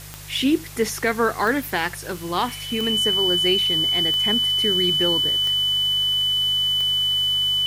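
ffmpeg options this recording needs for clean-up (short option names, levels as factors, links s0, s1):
-af "adeclick=t=4,bandreject=f=50.2:t=h:w=4,bandreject=f=100.4:t=h:w=4,bandreject=f=150.6:t=h:w=4,bandreject=f=3000:w=30,afwtdn=0.01"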